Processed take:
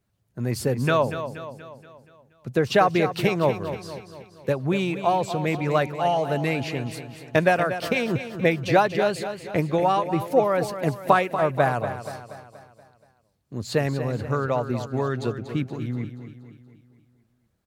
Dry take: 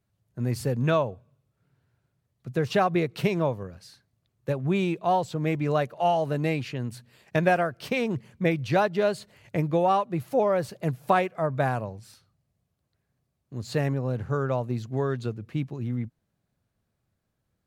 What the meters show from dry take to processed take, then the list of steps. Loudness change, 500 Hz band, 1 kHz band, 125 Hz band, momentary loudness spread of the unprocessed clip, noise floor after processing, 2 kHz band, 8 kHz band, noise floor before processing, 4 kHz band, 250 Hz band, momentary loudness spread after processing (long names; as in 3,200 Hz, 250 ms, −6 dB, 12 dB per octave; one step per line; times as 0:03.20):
+2.5 dB, +3.5 dB, +3.5 dB, +1.0 dB, 10 LU, −67 dBFS, +5.0 dB, +6.0 dB, −78 dBFS, +5.0 dB, +2.0 dB, 17 LU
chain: harmonic and percussive parts rebalanced percussive +6 dB
repeating echo 238 ms, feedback 51%, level −10.5 dB